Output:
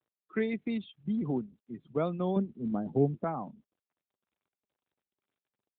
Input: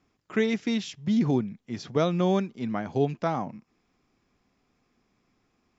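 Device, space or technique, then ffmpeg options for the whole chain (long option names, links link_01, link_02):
mobile call with aggressive noise cancelling: -filter_complex "[0:a]asettb=1/sr,asplit=3[link_01][link_02][link_03];[link_01]atrim=end=2.364[link_04];[link_02]atrim=start=2.36:end=3.24,asetpts=PTS-STARTPTS,afade=type=in:duration=0.004:curve=qsin,afade=type=out:start_time=0.876:duration=0.004:curve=qsin,tiltshelf=frequency=760:gain=8.5[link_05];[link_03]atrim=start=3.236[link_06];[link_04][link_05]acrossfade=duration=0.004:curve1=hsin:curve2=qsin[link_07];[link_07][link_06]acrossfade=duration=0.004:curve1=qsin:curve2=hsin,highpass=frequency=130:width=0.5412,highpass=frequency=130:width=1.3066,afftdn=noise_reduction=25:noise_floor=-35,volume=-5.5dB" -ar 8000 -c:a libopencore_amrnb -b:a 12200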